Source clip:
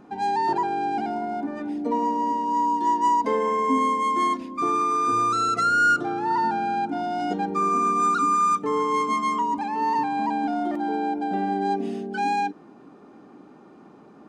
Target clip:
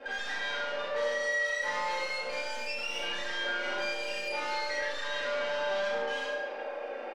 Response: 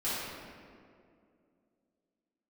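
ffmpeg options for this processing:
-filter_complex "[0:a]aeval=exprs='0.266*(cos(1*acos(clip(val(0)/0.266,-1,1)))-cos(1*PI/2))+0.0473*(cos(4*acos(clip(val(0)/0.266,-1,1)))-cos(4*PI/2))+0.075*(cos(6*acos(clip(val(0)/0.266,-1,1)))-cos(6*PI/2))+0.00596*(cos(7*acos(clip(val(0)/0.266,-1,1)))-cos(7*PI/2))':c=same,aecho=1:1:7.3:0.63,aeval=exprs='(tanh(39.8*val(0)+0.2)-tanh(0.2))/39.8':c=same[s0];[1:a]atrim=start_sample=2205[s1];[s0][s1]afir=irnorm=-1:irlink=0,acompressor=threshold=0.0178:ratio=2,aecho=1:1:75|150|225|300|375|450|525:0.501|0.281|0.157|0.088|0.0493|0.0276|0.0155,asetrate=88200,aresample=44100,acrossover=split=200 5800:gain=0.224 1 0.0708[s2][s3][s4];[s2][s3][s4]amix=inputs=3:normalize=0"

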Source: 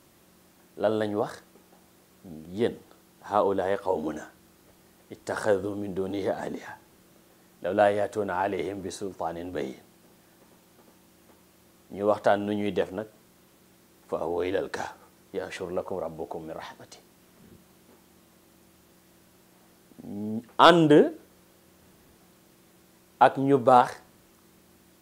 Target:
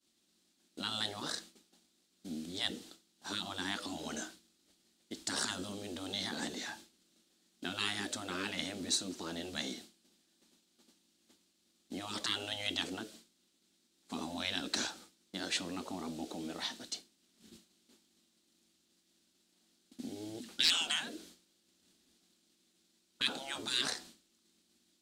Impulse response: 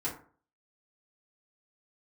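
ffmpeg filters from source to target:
-filter_complex "[0:a]agate=range=0.0224:threshold=0.00501:ratio=3:detection=peak,afftfilt=real='re*lt(hypot(re,im),0.1)':imag='im*lt(hypot(re,im),0.1)':win_size=1024:overlap=0.75,equalizer=f=125:t=o:w=1:g=-9,equalizer=f=250:t=o:w=1:g=10,equalizer=f=500:t=o:w=1:g=-7,equalizer=f=1000:t=o:w=1:g=-9,equalizer=f=2000:t=o:w=1:g=-4,equalizer=f=4000:t=o:w=1:g=10,equalizer=f=8000:t=o:w=1:g=9,asplit=2[s0][s1];[s1]highpass=f=720:p=1,volume=2.51,asoftclip=type=tanh:threshold=0.178[s2];[s0][s2]amix=inputs=2:normalize=0,lowpass=f=3800:p=1,volume=0.501"

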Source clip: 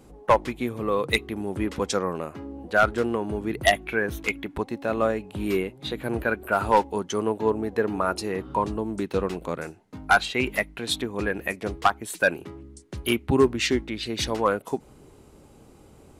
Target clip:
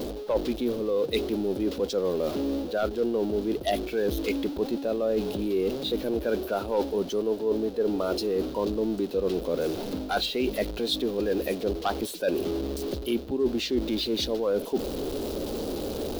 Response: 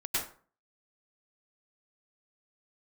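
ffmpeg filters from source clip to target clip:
-af "aeval=exprs='val(0)+0.5*0.0335*sgn(val(0))':c=same,equalizer=f=125:t=o:w=1:g=-11,equalizer=f=250:t=o:w=1:g=4,equalizer=f=500:t=o:w=1:g=8,equalizer=f=1000:t=o:w=1:g=-7,equalizer=f=2000:t=o:w=1:g=-11,equalizer=f=4000:t=o:w=1:g=7,equalizer=f=8000:t=o:w=1:g=-10,areverse,acompressor=threshold=0.0562:ratio=6,areverse,volume=1.19"

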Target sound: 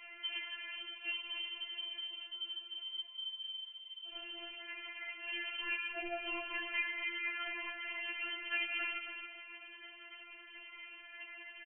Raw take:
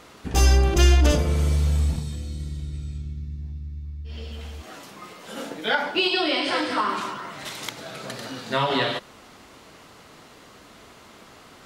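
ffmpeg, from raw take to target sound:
-filter_complex "[0:a]highpass=79,acompressor=threshold=0.0251:ratio=12,afftfilt=real='hypot(re,im)*cos(2*PI*random(0))':imag='hypot(re,im)*sin(2*PI*random(1))':win_size=512:overlap=0.75,aeval=exprs='val(0)*sin(2*PI*25*n/s)':c=same,lowpass=f=2800:t=q:w=0.5098,lowpass=f=2800:t=q:w=0.6013,lowpass=f=2800:t=q:w=0.9,lowpass=f=2800:t=q:w=2.563,afreqshift=-3300,asplit=2[s0][s1];[s1]adelay=15,volume=0.562[s2];[s0][s2]amix=inputs=2:normalize=0,asplit=2[s3][s4];[s4]aecho=0:1:272|544|816|1088:0.447|0.134|0.0402|0.0121[s5];[s3][s5]amix=inputs=2:normalize=0,afftfilt=real='re*4*eq(mod(b,16),0)':imag='im*4*eq(mod(b,16),0)':win_size=2048:overlap=0.75,volume=2.37"

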